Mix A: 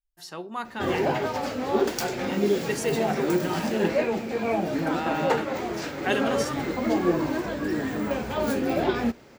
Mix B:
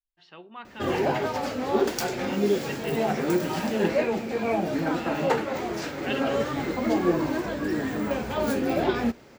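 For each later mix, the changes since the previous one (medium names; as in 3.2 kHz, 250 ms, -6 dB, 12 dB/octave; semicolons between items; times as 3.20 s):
speech: add four-pole ladder low-pass 3.4 kHz, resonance 55%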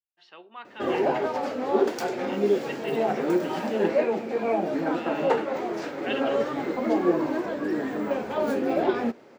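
background: add tilt EQ -3 dB/octave; master: add high-pass 370 Hz 12 dB/octave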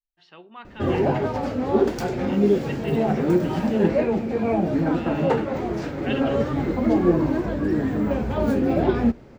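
master: remove high-pass 370 Hz 12 dB/octave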